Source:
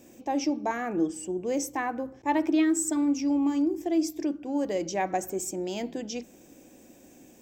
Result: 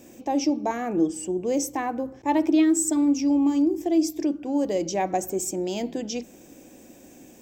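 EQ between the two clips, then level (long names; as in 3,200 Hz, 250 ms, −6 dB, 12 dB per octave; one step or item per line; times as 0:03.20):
dynamic equaliser 1,600 Hz, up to −7 dB, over −46 dBFS, Q 1.1
+4.5 dB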